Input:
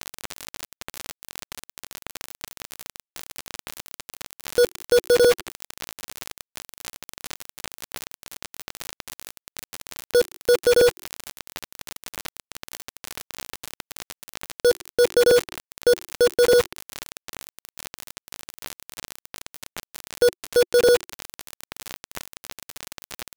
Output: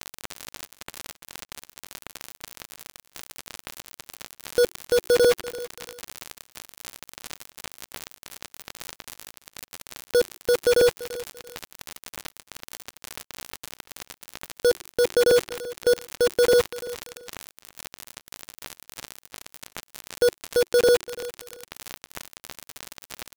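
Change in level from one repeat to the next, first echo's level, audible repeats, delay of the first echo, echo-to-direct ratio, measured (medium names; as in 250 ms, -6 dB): -11.5 dB, -17.0 dB, 2, 339 ms, -16.5 dB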